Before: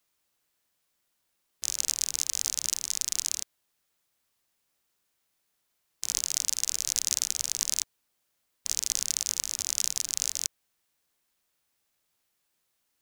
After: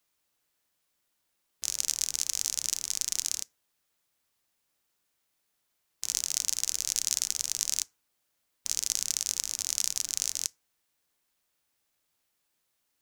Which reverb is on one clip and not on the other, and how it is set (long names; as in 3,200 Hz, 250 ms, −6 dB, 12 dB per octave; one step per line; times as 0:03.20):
feedback delay network reverb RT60 0.39 s, low-frequency decay 0.85×, high-frequency decay 0.5×, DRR 17.5 dB
level −1 dB